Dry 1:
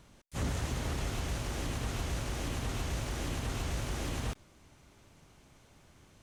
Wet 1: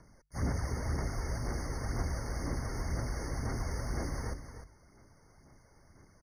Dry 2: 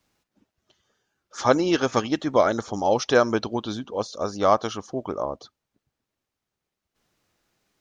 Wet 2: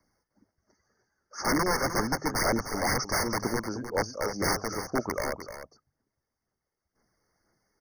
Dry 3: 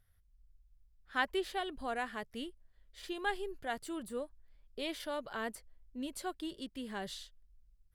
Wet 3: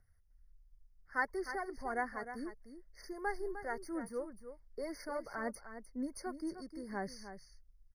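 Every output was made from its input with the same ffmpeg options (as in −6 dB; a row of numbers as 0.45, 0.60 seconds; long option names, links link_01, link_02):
-filter_complex "[0:a]bandreject=frequency=50:width_type=h:width=6,bandreject=frequency=100:width_type=h:width=6,bandreject=frequency=150:width_type=h:width=6,acrossover=split=310[link_01][link_02];[link_01]acompressor=threshold=-26dB:ratio=6[link_03];[link_03][link_02]amix=inputs=2:normalize=0,aeval=exprs='0.668*(cos(1*acos(clip(val(0)/0.668,-1,1)))-cos(1*PI/2))+0.0266*(cos(3*acos(clip(val(0)/0.668,-1,1)))-cos(3*PI/2))+0.00944*(cos(7*acos(clip(val(0)/0.668,-1,1)))-cos(7*PI/2))':channel_layout=same,acrossover=split=2300[link_04][link_05];[link_04]aeval=exprs='(mod(11.2*val(0)+1,2)-1)/11.2':channel_layout=same[link_06];[link_06][link_05]amix=inputs=2:normalize=0,aphaser=in_gain=1:out_gain=1:delay=2.3:decay=0.4:speed=2:type=sinusoidal,asplit=2[link_07][link_08];[link_08]aecho=0:1:305:0.299[link_09];[link_07][link_09]amix=inputs=2:normalize=0,afftfilt=real='re*eq(mod(floor(b*sr/1024/2200),2),0)':imag='im*eq(mod(floor(b*sr/1024/2200),2),0)':win_size=1024:overlap=0.75"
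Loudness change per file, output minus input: −0.5, −5.0, −1.5 LU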